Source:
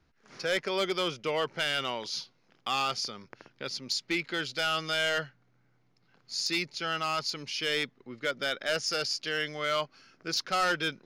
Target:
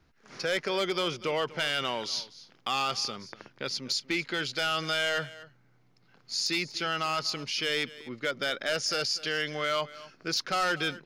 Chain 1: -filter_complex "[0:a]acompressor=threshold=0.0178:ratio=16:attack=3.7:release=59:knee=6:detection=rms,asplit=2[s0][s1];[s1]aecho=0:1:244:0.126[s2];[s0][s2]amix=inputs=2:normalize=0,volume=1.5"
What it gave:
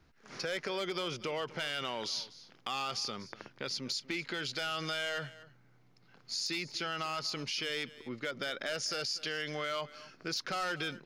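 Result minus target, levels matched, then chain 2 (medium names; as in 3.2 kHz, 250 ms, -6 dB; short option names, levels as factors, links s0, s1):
compression: peak gain reduction +7.5 dB
-filter_complex "[0:a]acompressor=threshold=0.0473:ratio=16:attack=3.7:release=59:knee=6:detection=rms,asplit=2[s0][s1];[s1]aecho=0:1:244:0.126[s2];[s0][s2]amix=inputs=2:normalize=0,volume=1.5"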